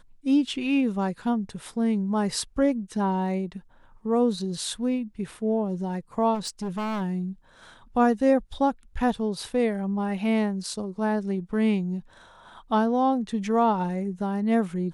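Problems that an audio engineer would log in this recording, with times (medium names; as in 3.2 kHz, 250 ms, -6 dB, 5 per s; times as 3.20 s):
6.34–7.02 s: clipped -26.5 dBFS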